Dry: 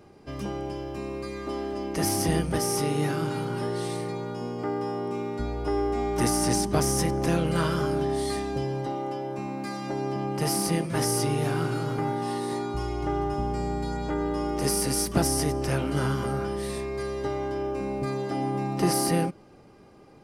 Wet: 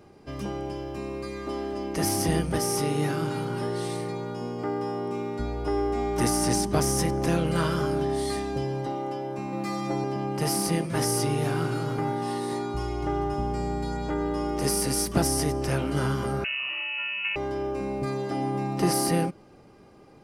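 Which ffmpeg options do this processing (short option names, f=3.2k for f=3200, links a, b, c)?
-filter_complex "[0:a]asettb=1/sr,asplit=3[a][b][c];[a]atrim=end=9.524[d];[b]atrim=start=9.52:end=10.04,asetpts=PTS-STARTPTS,afade=t=in:d=0.004:c=qsin,afade=t=out:st=0.516:d=0.004:c=qsin,aecho=1:1:5.9:0.93,atrim=end_sample=22932[e];[c]atrim=start=10.036[f];[d][e]acrossfade=d=0.004:c1=hsin:c2=qsin[g];[g][f]acrossfade=d=0.004:c1=qsin:c2=hsin,asettb=1/sr,asplit=3[h][i][j];[h]atrim=end=16.444[k];[i]atrim=start=16.44:end=17.36,asetpts=PTS-STARTPTS,afade=t=in:d=0.004:c=qsin,afade=t=out:st=0.916:d=0.004:c=qsin,lowpass=f=2.6k:t=q:w=0.5098,lowpass=f=2.6k:t=q:w=0.6013,lowpass=f=2.6k:t=q:w=0.9,lowpass=f=2.6k:t=q:w=2.563,afreqshift=-3000[l];[j]atrim=start=17.356[m];[k][l]acrossfade=d=0.004:c1=hsin:c2=qsin[n];[n][m]acrossfade=d=0.004:c1=qsin:c2=hsin"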